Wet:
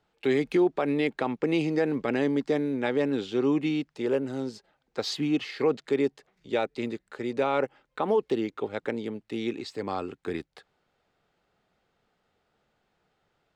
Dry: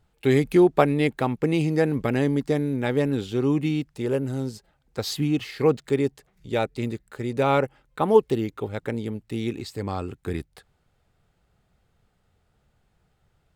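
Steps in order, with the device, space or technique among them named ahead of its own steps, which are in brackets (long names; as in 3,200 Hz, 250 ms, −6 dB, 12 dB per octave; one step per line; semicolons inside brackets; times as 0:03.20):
DJ mixer with the lows and highs turned down (three-way crossover with the lows and the highs turned down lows −17 dB, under 210 Hz, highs −19 dB, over 6,700 Hz; brickwall limiter −15.5 dBFS, peak gain reduction 11.5 dB)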